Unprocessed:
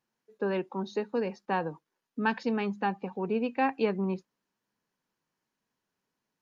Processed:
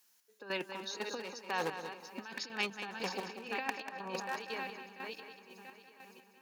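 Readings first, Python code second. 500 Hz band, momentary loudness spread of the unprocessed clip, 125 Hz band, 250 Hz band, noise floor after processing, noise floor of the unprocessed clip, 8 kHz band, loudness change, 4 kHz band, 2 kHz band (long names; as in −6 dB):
−10.0 dB, 7 LU, −14.5 dB, −14.5 dB, −69 dBFS, below −85 dBFS, can't be measured, −8.0 dB, +5.5 dB, −2.0 dB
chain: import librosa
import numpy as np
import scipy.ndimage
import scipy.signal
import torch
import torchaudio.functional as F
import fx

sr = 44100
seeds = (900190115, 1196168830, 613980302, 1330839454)

y = fx.reverse_delay_fb(x, sr, ms=344, feedback_pct=69, wet_db=-12.5)
y = fx.highpass(y, sr, hz=150.0, slope=6)
y = fx.spec_box(y, sr, start_s=3.78, length_s=0.58, low_hz=500.0, high_hz=1900.0, gain_db=10)
y = fx.low_shelf(y, sr, hz=240.0, db=10.0)
y = fx.over_compress(y, sr, threshold_db=-29.0, ratio=-0.5)
y = fx.clip_asym(y, sr, top_db=-23.5, bottom_db=-17.0)
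y = fx.chopper(y, sr, hz=2.0, depth_pct=65, duty_pct=40)
y = np.diff(y, prepend=0.0)
y = fx.echo_feedback(y, sr, ms=191, feedback_pct=25, wet_db=-9.5)
y = F.gain(torch.from_numpy(y), 17.0).numpy()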